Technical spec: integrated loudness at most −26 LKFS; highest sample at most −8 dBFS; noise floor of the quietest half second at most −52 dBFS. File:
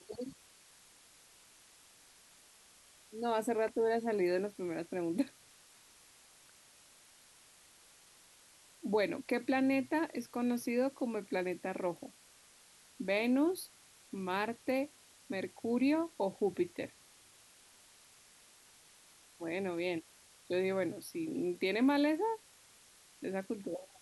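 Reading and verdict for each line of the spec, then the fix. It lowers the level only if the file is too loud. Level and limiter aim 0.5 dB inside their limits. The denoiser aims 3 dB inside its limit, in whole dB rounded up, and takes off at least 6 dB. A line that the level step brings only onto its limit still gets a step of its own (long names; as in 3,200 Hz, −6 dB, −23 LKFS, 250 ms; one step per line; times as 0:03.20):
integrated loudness −35.5 LKFS: in spec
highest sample −19.0 dBFS: in spec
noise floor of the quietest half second −62 dBFS: in spec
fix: no processing needed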